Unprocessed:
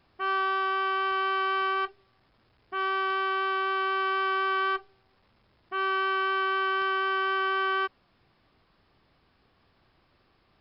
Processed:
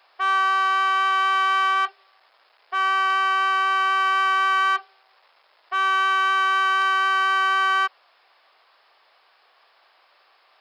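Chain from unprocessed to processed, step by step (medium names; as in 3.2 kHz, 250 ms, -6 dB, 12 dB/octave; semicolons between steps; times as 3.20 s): high-pass 600 Hz 24 dB/octave; in parallel at +1 dB: saturation -31.5 dBFS, distortion -9 dB; on the sum: trim +4 dB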